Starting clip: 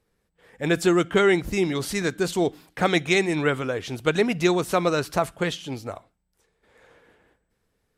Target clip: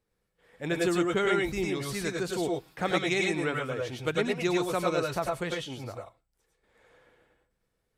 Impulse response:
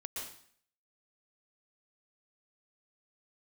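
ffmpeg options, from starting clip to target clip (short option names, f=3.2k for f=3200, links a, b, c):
-filter_complex "[1:a]atrim=start_sample=2205,atrim=end_sample=6174,asetrate=52920,aresample=44100[a];[0:a][a]afir=irnorm=-1:irlink=0,volume=-1.5dB"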